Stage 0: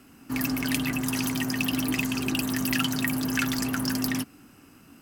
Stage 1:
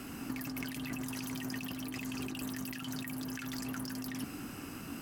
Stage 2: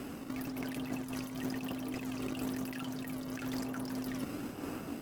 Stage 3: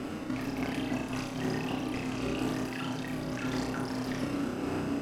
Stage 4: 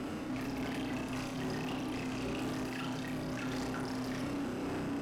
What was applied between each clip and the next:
compressor whose output falls as the input rises −38 dBFS, ratio −1; level −1.5 dB
parametric band 540 Hz +10.5 dB 1.5 octaves; in parallel at −4 dB: sample-and-hold swept by an LFO 30×, swing 160% 1 Hz; on the sum: amplitude modulation by smooth noise, depth 60%; level −2.5 dB
high-frequency loss of the air 57 metres; flutter between parallel walls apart 5.5 metres, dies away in 0.61 s; level +5 dB
soft clipping −33 dBFS, distortion −11 dB

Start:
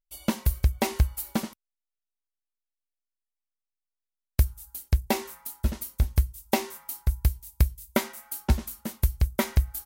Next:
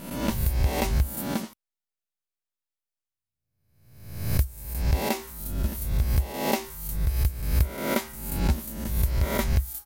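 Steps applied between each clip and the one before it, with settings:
peak hold with a rise ahead of every peak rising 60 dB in 0.86 s
level −3.5 dB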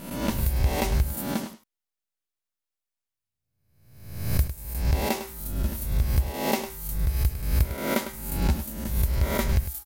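single-tap delay 103 ms −11.5 dB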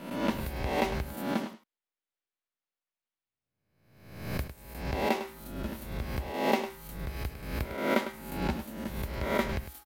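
three-way crossover with the lows and the highs turned down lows −14 dB, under 180 Hz, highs −14 dB, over 3,900 Hz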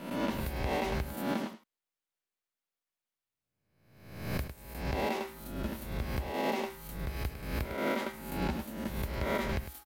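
brickwall limiter −22 dBFS, peak gain reduction 11 dB

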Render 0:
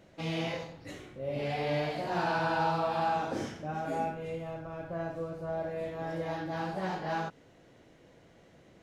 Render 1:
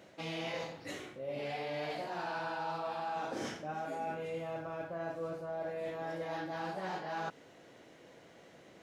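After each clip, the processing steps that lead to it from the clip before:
high-pass filter 330 Hz 6 dB per octave
reversed playback
downward compressor 6 to 1, threshold −40 dBFS, peak gain reduction 13 dB
reversed playback
level +4 dB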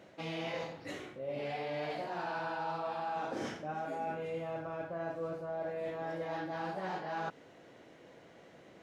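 high-shelf EQ 4,100 Hz −7 dB
level +1 dB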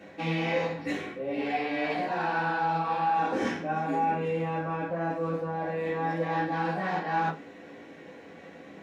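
convolution reverb RT60 0.25 s, pre-delay 3 ms, DRR −5.5 dB
level +1.5 dB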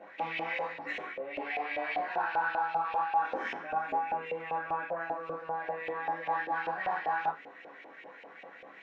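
downward compressor 2.5 to 1, threshold −30 dBFS, peak gain reduction 5 dB
auto-filter band-pass saw up 5.1 Hz 650–2,800 Hz
level +6.5 dB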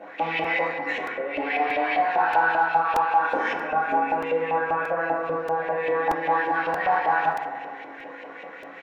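far-end echo of a speakerphone 150 ms, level −18 dB
feedback delay network reverb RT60 1.9 s, low-frequency decay 1×, high-frequency decay 0.3×, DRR 3.5 dB
regular buffer underruns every 0.63 s, samples 128, repeat, from 0:00.44
level +8 dB

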